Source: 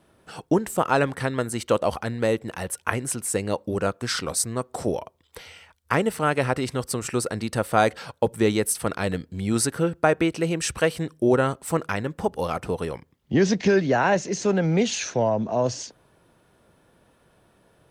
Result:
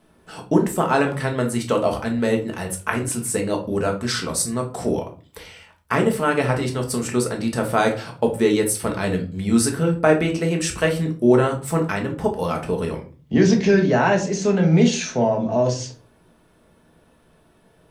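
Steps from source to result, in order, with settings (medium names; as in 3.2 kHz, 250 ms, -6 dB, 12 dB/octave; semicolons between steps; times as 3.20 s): simulated room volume 240 m³, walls furnished, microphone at 1.5 m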